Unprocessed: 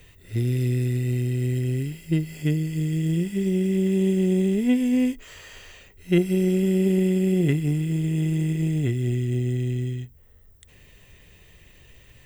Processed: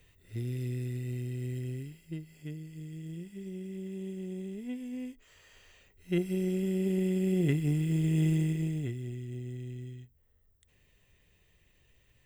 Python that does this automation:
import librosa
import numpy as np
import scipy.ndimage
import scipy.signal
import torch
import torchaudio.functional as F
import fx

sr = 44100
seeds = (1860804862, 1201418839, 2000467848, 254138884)

y = fx.gain(x, sr, db=fx.line((1.66, -11.5), (2.25, -18.0), (5.1, -18.0), (6.23, -9.5), (6.79, -9.5), (8.28, -2.5), (9.12, -15.0)))